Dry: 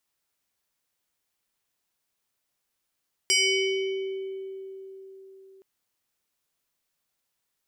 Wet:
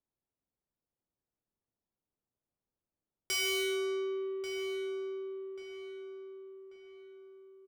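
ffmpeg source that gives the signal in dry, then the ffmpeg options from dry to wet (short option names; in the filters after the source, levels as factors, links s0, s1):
-f lavfi -i "aevalsrc='0.126*pow(10,-3*t/4.31)*sin(2*PI*385*t+2.9*pow(10,-3*t/2.04)*sin(2*PI*6.85*385*t))':d=2.32:s=44100"
-filter_complex "[0:a]adynamicsmooth=sensitivity=5.5:basefreq=600,asoftclip=type=tanh:threshold=0.0282,asplit=2[s0][s1];[s1]adelay=1138,lowpass=f=2700:p=1,volume=0.398,asplit=2[s2][s3];[s3]adelay=1138,lowpass=f=2700:p=1,volume=0.41,asplit=2[s4][s5];[s5]adelay=1138,lowpass=f=2700:p=1,volume=0.41,asplit=2[s6][s7];[s7]adelay=1138,lowpass=f=2700:p=1,volume=0.41,asplit=2[s8][s9];[s9]adelay=1138,lowpass=f=2700:p=1,volume=0.41[s10];[s0][s2][s4][s6][s8][s10]amix=inputs=6:normalize=0"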